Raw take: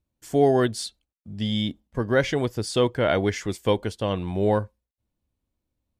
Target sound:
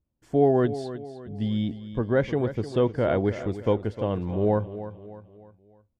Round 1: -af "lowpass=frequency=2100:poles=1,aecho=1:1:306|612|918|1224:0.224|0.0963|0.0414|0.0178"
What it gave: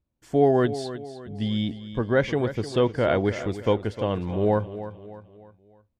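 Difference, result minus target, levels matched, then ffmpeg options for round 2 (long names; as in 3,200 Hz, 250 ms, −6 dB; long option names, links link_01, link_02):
2,000 Hz band +4.0 dB
-af "lowpass=frequency=800:poles=1,aecho=1:1:306|612|918|1224:0.224|0.0963|0.0414|0.0178"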